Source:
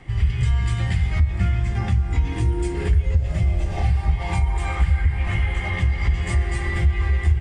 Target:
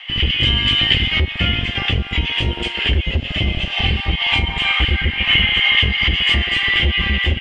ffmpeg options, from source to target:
ffmpeg -i in.wav -filter_complex "[0:a]lowpass=frequency=3000:width_type=q:width=9.4,tiltshelf=frequency=1300:gain=-7,acrossover=split=570|1400[link_01][link_02][link_03];[link_01]acrusher=bits=3:mix=0:aa=0.5[link_04];[link_04][link_02][link_03]amix=inputs=3:normalize=0,volume=5.5dB" out.wav

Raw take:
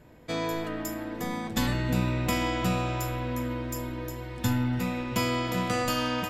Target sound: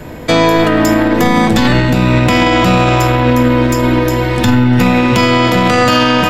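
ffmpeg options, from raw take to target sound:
ffmpeg -i in.wav -filter_complex "[0:a]bandreject=frequency=60:width_type=h:width=6,bandreject=frequency=120:width_type=h:width=6,bandreject=frequency=180:width_type=h:width=6,aeval=exprs='0.237*(cos(1*acos(clip(val(0)/0.237,-1,1)))-cos(1*PI/2))+0.00841*(cos(8*acos(clip(val(0)/0.237,-1,1)))-cos(8*PI/2))':channel_layout=same,acrossover=split=180|1200|5600[link_01][link_02][link_03][link_04];[link_04]acompressor=threshold=-54dB:ratio=6[link_05];[link_01][link_02][link_03][link_05]amix=inputs=4:normalize=0,alimiter=level_in=26.5dB:limit=-1dB:release=50:level=0:latency=1,volume=-1dB" out.wav

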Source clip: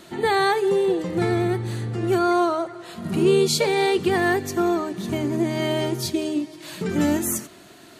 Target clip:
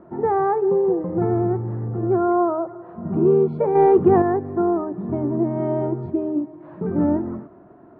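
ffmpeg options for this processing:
ffmpeg -i in.wav -filter_complex "[0:a]lowpass=frequency=1100:width=0.5412,lowpass=frequency=1100:width=1.3066,asettb=1/sr,asplit=3[link_01][link_02][link_03];[link_01]atrim=end=3.754[link_04];[link_02]atrim=start=3.75:end=4.22,asetpts=PTS-STARTPTS,afade=type=in:duration=0.004:curve=qsin,afade=type=out:start_time=0.466:duration=0.004:curve=qsin,acontrast=47[link_05];[link_03]atrim=start=4.216[link_06];[link_04][link_05]acrossfade=duration=0.004:curve1=hsin:curve2=qsin[link_07];[link_07][link_06]acrossfade=duration=0.004:curve1=qsin:curve2=hsin,volume=1.5dB" out.wav

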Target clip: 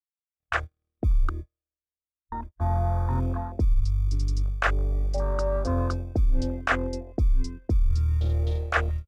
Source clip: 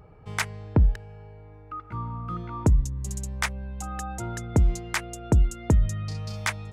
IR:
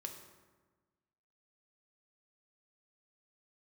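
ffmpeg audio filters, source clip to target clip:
-filter_complex "[0:a]acrossover=split=160|3000[link_01][link_02][link_03];[link_01]acrusher=samples=28:mix=1:aa=0.000001[link_04];[link_04][link_02][link_03]amix=inputs=3:normalize=0,asetrate=32667,aresample=44100,equalizer=frequency=160:width_type=o:width=0.55:gain=-14.5,dynaudnorm=framelen=560:gausssize=3:maxgain=11.5dB,agate=range=-58dB:threshold=-30dB:ratio=16:detection=peak,equalizer=frequency=930:width_type=o:width=0.2:gain=-12.5,areverse,acompressor=threshold=-24dB:ratio=5,areverse,afwtdn=0.0224,volume=3.5dB"

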